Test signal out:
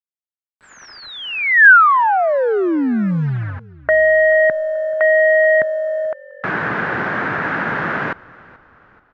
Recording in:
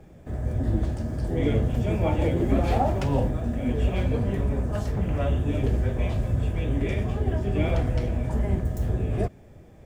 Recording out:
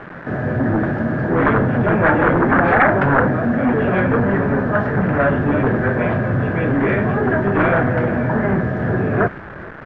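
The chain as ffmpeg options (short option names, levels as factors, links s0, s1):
-filter_complex "[0:a]highpass=f=130:w=0.5412,highpass=f=130:w=1.3066,aemphasis=mode=reproduction:type=50kf,aresample=16000,aeval=exprs='0.266*sin(PI/2*3.55*val(0)/0.266)':c=same,aresample=44100,acrusher=bits=5:mix=0:aa=0.000001,lowpass=f=1600:t=q:w=4.4,asplit=4[s0][s1][s2][s3];[s1]adelay=433,afreqshift=-46,volume=0.075[s4];[s2]adelay=866,afreqshift=-92,volume=0.0351[s5];[s3]adelay=1299,afreqshift=-138,volume=0.0166[s6];[s0][s4][s5][s6]amix=inputs=4:normalize=0,volume=0.891"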